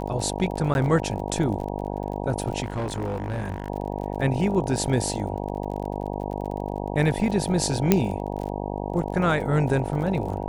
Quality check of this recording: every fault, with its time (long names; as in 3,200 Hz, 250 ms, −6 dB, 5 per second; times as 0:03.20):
mains buzz 50 Hz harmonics 19 −30 dBFS
surface crackle 38 per second −33 dBFS
0:00.74–0:00.75: drop-out 11 ms
0:02.62–0:03.70: clipping −24 dBFS
0:07.92: click −3 dBFS